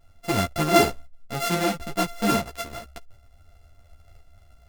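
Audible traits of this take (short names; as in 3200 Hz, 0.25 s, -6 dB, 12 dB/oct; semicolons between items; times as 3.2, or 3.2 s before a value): a buzz of ramps at a fixed pitch in blocks of 64 samples; tremolo saw up 1.9 Hz, depth 30%; a shimmering, thickened sound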